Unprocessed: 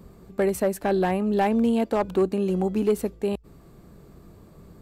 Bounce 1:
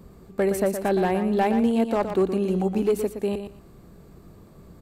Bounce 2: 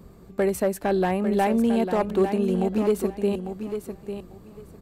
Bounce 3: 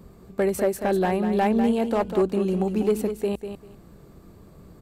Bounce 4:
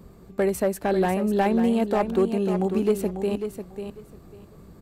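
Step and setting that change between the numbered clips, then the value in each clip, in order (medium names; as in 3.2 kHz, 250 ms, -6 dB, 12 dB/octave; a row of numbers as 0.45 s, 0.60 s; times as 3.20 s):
feedback delay, time: 118 ms, 849 ms, 197 ms, 545 ms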